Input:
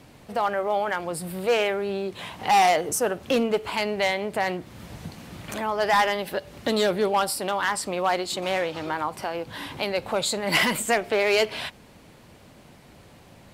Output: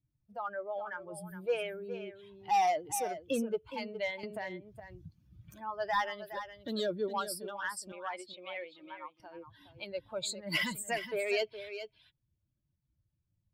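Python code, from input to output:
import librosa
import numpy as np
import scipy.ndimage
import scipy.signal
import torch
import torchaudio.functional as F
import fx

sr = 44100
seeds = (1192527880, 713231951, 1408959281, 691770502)

y = fx.bin_expand(x, sr, power=2.0)
y = fx.cabinet(y, sr, low_hz=400.0, low_slope=12, high_hz=3500.0, hz=(410.0, 640.0, 980.0, 1500.0, 2200.0, 3300.0), db=(-6, -5, -5, -8, 10, 4), at=(7.92, 9.2))
y = y + 10.0 ** (-11.0 / 20.0) * np.pad(y, (int(415 * sr / 1000.0), 0))[:len(y)]
y = fx.band_squash(y, sr, depth_pct=100, at=(4.23, 4.8))
y = y * 10.0 ** (-7.0 / 20.0)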